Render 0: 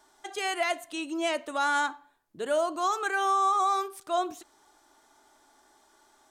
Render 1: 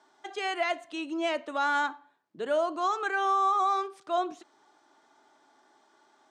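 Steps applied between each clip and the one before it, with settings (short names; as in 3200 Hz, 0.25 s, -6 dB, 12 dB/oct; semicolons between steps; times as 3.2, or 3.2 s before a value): HPF 140 Hz 24 dB/oct; air absorption 110 m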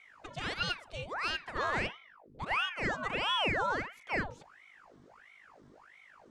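hum 50 Hz, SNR 22 dB; ring modulator with a swept carrier 1200 Hz, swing 85%, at 1.5 Hz; gain -2.5 dB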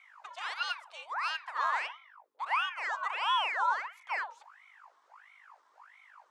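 ladder high-pass 840 Hz, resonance 55%; gain +7.5 dB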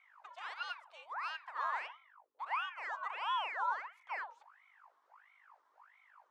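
high shelf 3300 Hz -10.5 dB; gain -5 dB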